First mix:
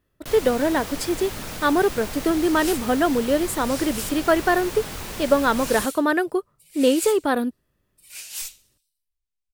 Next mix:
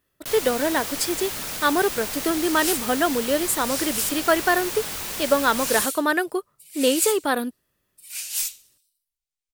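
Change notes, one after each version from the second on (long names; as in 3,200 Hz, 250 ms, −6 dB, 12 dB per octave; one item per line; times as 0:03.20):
master: add spectral tilt +2 dB per octave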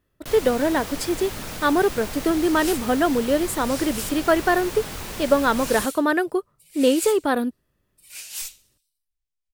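master: add spectral tilt −2 dB per octave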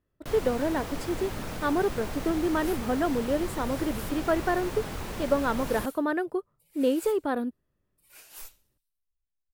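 speech −6.0 dB
second sound: add flat-topped bell 4,200 Hz −8.5 dB 2.5 octaves
master: add high-shelf EQ 2,200 Hz −9.5 dB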